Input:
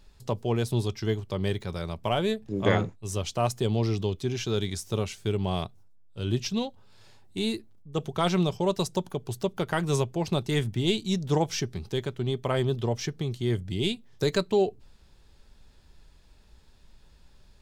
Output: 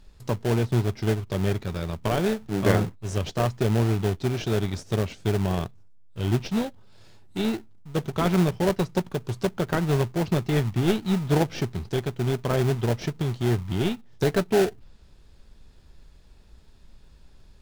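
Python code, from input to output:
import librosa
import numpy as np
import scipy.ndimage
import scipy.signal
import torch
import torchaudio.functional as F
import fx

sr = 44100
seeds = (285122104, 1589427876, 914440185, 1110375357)

p1 = fx.env_lowpass_down(x, sr, base_hz=2400.0, full_db=-23.0)
p2 = fx.sample_hold(p1, sr, seeds[0], rate_hz=1100.0, jitter_pct=20)
y = p1 + (p2 * 10.0 ** (-3.5 / 20.0))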